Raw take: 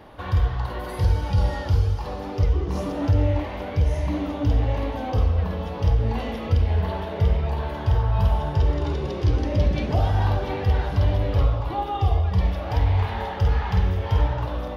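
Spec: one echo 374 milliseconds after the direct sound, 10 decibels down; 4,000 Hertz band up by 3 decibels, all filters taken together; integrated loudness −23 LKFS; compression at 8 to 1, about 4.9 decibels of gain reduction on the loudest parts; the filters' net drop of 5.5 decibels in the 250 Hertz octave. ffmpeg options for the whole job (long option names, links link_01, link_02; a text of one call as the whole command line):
ffmpeg -i in.wav -af "equalizer=frequency=250:width_type=o:gain=-8,equalizer=frequency=4000:width_type=o:gain=4,acompressor=threshold=-20dB:ratio=8,aecho=1:1:374:0.316,volume=4dB" out.wav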